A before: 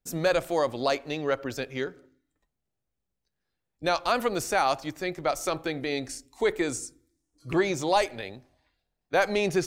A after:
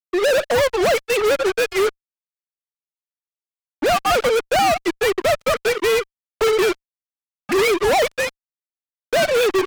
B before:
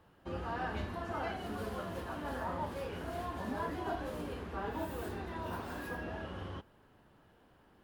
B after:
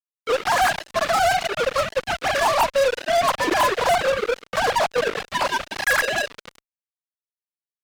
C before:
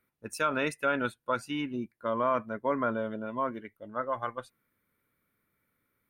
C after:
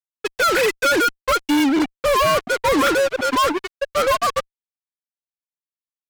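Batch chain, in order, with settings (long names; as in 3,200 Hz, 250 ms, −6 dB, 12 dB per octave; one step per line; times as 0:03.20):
three sine waves on the formant tracks
fuzz pedal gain 43 dB, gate −42 dBFS
level −1.5 dB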